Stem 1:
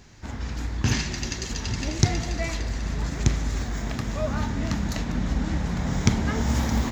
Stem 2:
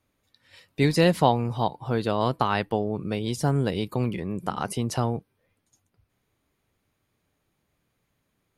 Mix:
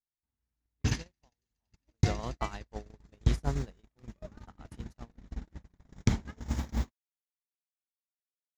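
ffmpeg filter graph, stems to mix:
-filter_complex "[0:a]volume=-6.5dB[a];[1:a]volume=-8dB,afade=t=in:st=1.88:d=0.32:silence=0.298538,afade=t=out:st=4.75:d=0.64:silence=0.281838[b];[a][b]amix=inputs=2:normalize=0,agate=range=-53dB:threshold=-27dB:ratio=16:detection=peak,lowshelf=f=66:g=7"

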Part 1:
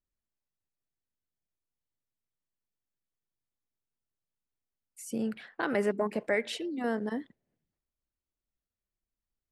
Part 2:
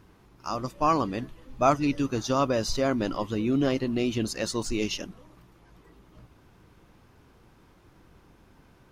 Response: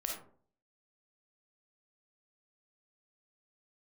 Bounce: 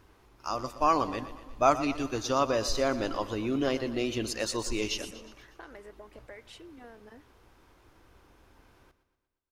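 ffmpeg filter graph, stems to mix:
-filter_complex "[0:a]acompressor=threshold=-39dB:ratio=6,volume=-5dB[a];[1:a]volume=-0.5dB,asplit=2[b][c];[c]volume=-14dB,aecho=0:1:120|240|360|480|600|720|840|960:1|0.54|0.292|0.157|0.085|0.0459|0.0248|0.0134[d];[a][b][d]amix=inputs=3:normalize=0,equalizer=f=170:t=o:w=1.1:g=-11.5"

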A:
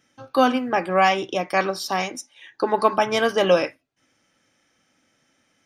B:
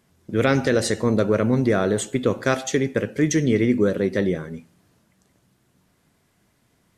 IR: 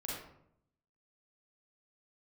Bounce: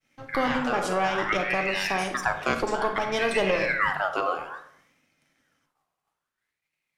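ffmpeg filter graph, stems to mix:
-filter_complex "[0:a]aeval=exprs='if(lt(val(0),0),0.447*val(0),val(0))':c=same,highshelf=f=9k:g=-7,alimiter=limit=-14.5dB:level=0:latency=1:release=312,volume=-2dB,asplit=3[a][b][c];[b]volume=-4dB[d];[1:a]aeval=exprs='val(0)*sin(2*PI*1600*n/s+1600*0.45/0.59*sin(2*PI*0.59*n/s))':c=same,volume=-4.5dB,asplit=2[e][f];[f]volume=-8dB[g];[c]apad=whole_len=307811[h];[e][h]sidechaincompress=threshold=-39dB:ratio=8:attack=16:release=144[i];[2:a]atrim=start_sample=2205[j];[d][g]amix=inputs=2:normalize=0[k];[k][j]afir=irnorm=-1:irlink=0[l];[a][i][l]amix=inputs=3:normalize=0,agate=range=-33dB:threshold=-59dB:ratio=3:detection=peak,equalizer=f=150:w=5.4:g=8"

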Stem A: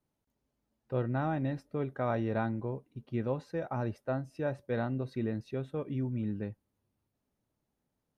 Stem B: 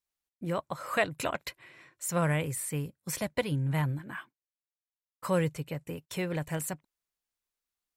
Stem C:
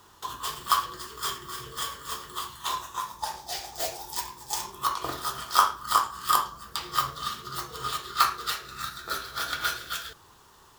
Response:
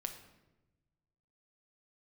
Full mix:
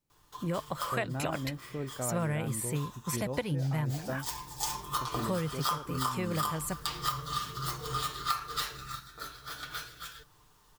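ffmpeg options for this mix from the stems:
-filter_complex "[0:a]volume=-4.5dB,asplit=3[a][b][c];[a]atrim=end=4.26,asetpts=PTS-STARTPTS,afade=t=out:st=4.256:d=0.004:c=hsin[d];[b]atrim=start=4.26:end=5.01,asetpts=PTS-STARTPTS,volume=0[e];[c]atrim=start=5.01,asetpts=PTS-STARTPTS,afade=t=in:d=0.004:c=hsin[f];[d][e][f]concat=n=3:v=0:a=1,asplit=2[g][h];[1:a]volume=0.5dB[i];[2:a]lowshelf=f=79:g=11,aecho=1:1:6.7:0.74,acrusher=bits=8:mix=0:aa=0.000001,adelay=100,volume=-2.5dB,afade=t=in:st=3.83:d=0.64:silence=0.281838,afade=t=out:st=8.71:d=0.31:silence=0.334965[j];[h]apad=whole_len=480375[k];[j][k]sidechaincompress=threshold=-36dB:ratio=8:attack=29:release=603[l];[g][i][l]amix=inputs=3:normalize=0,lowshelf=f=180:g=4.5,acompressor=threshold=-28dB:ratio=6"

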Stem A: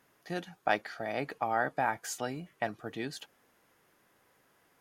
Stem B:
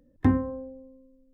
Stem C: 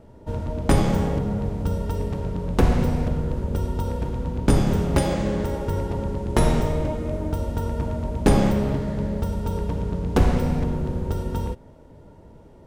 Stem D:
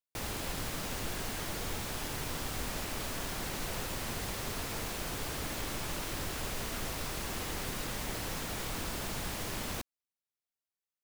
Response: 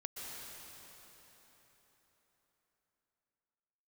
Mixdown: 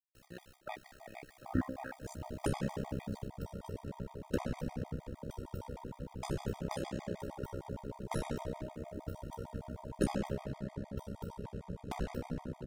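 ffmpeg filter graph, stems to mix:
-filter_complex "[0:a]aeval=exprs='sgn(val(0))*max(abs(val(0))-0.00376,0)':c=same,volume=-5dB,asplit=3[a][b][c];[b]volume=-12dB[d];[1:a]adelay=1300,volume=-3.5dB[e];[2:a]lowshelf=f=70:g=-9.5,bandreject=f=1.2k:w=18,adelay=1750,volume=-4dB[f];[3:a]volume=-16.5dB,asplit=2[g][h];[h]volume=-6dB[i];[c]apad=whole_len=486700[j];[g][j]sidechaingate=range=-30dB:threshold=-59dB:ratio=16:detection=peak[k];[4:a]atrim=start_sample=2205[l];[d][i]amix=inputs=2:normalize=0[m];[m][l]afir=irnorm=-1:irlink=0[n];[a][e][f][k][n]amix=inputs=5:normalize=0,flanger=delay=5:depth=7.6:regen=-47:speed=1.5:shape=triangular,tremolo=f=65:d=0.857,afftfilt=real='re*gt(sin(2*PI*6.5*pts/sr)*(1-2*mod(floor(b*sr/1024/630),2)),0)':imag='im*gt(sin(2*PI*6.5*pts/sr)*(1-2*mod(floor(b*sr/1024/630),2)),0)':win_size=1024:overlap=0.75"

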